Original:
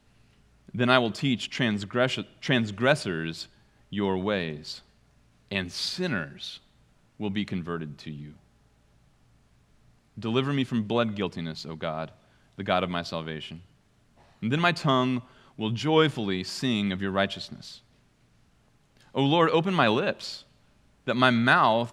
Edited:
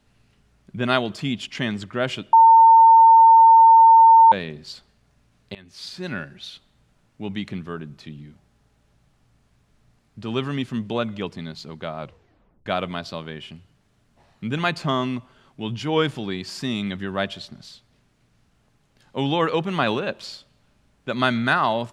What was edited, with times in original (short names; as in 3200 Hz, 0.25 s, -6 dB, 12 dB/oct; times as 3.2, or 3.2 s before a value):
2.33–4.32 bleep 905 Hz -7.5 dBFS
5.55–6.22 fade in, from -23.5 dB
11.99 tape stop 0.67 s